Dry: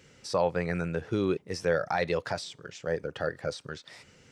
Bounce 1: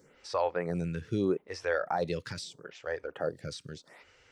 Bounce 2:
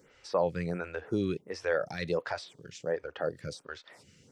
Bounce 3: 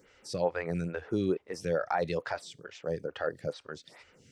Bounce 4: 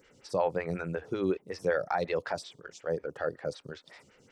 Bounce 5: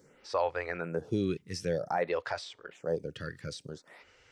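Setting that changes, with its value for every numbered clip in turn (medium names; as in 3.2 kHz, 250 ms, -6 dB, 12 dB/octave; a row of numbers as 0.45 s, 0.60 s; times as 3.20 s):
lamp-driven phase shifter, rate: 0.78 Hz, 1.4 Hz, 2.3 Hz, 5.4 Hz, 0.53 Hz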